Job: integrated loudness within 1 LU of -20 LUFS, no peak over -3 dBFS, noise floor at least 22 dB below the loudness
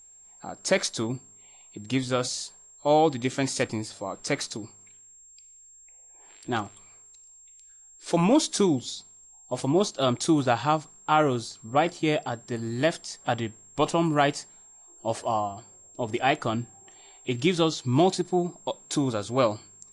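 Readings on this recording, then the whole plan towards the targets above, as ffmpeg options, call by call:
steady tone 7500 Hz; tone level -50 dBFS; loudness -26.5 LUFS; peak -8.0 dBFS; loudness target -20.0 LUFS
-> -af "bandreject=f=7.5k:w=30"
-af "volume=6.5dB,alimiter=limit=-3dB:level=0:latency=1"

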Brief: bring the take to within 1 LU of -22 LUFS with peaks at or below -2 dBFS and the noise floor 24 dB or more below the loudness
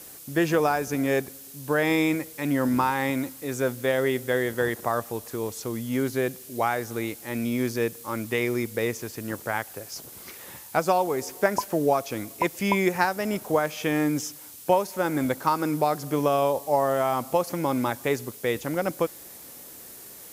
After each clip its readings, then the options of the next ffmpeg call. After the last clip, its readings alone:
noise floor -44 dBFS; noise floor target -51 dBFS; loudness -26.5 LUFS; peak -7.0 dBFS; loudness target -22.0 LUFS
-> -af "afftdn=nr=7:nf=-44"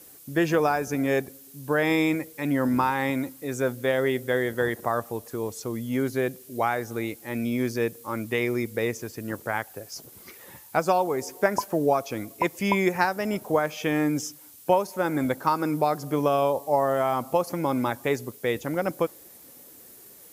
noise floor -49 dBFS; noise floor target -51 dBFS
-> -af "afftdn=nr=6:nf=-49"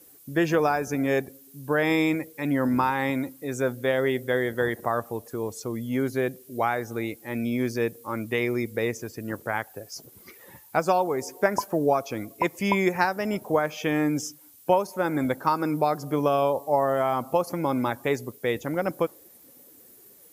noise floor -53 dBFS; loudness -26.5 LUFS; peak -7.0 dBFS; loudness target -22.0 LUFS
-> -af "volume=4.5dB"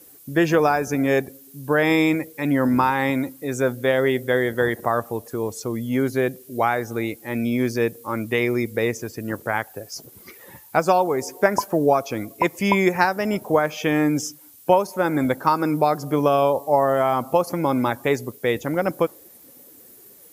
loudness -22.0 LUFS; peak -2.5 dBFS; noise floor -48 dBFS

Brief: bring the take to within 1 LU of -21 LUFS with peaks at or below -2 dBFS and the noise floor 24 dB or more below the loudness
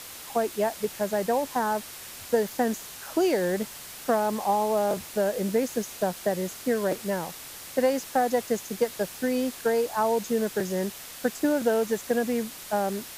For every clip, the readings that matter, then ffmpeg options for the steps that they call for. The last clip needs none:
noise floor -42 dBFS; noise floor target -52 dBFS; loudness -27.5 LUFS; peak -10.0 dBFS; loudness target -21.0 LUFS
-> -af "afftdn=nr=10:nf=-42"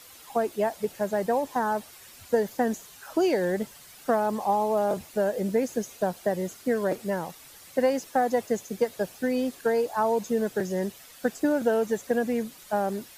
noise floor -50 dBFS; noise floor target -52 dBFS
-> -af "afftdn=nr=6:nf=-50"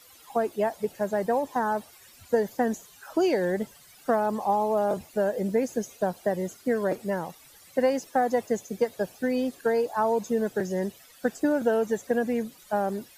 noise floor -53 dBFS; loudness -27.5 LUFS; peak -10.5 dBFS; loudness target -21.0 LUFS
-> -af "volume=6.5dB"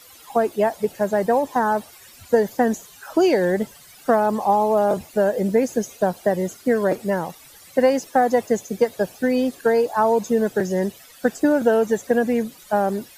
loudness -21.0 LUFS; peak -4.0 dBFS; noise floor -47 dBFS

